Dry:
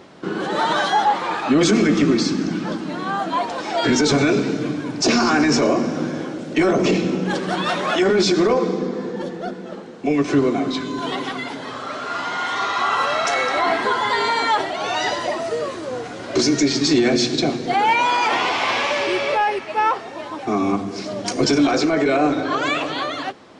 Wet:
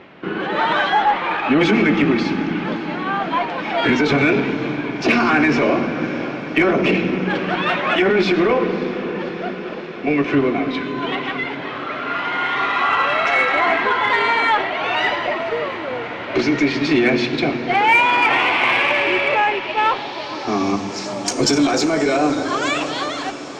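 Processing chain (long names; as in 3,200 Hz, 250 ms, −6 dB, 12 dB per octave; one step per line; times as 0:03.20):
feedback delay with all-pass diffusion 587 ms, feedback 78%, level −15.5 dB
low-pass filter sweep 2,500 Hz → 8,000 Hz, 0:19.42–0:21.17
harmonic generator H 8 −36 dB, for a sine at −2.5 dBFS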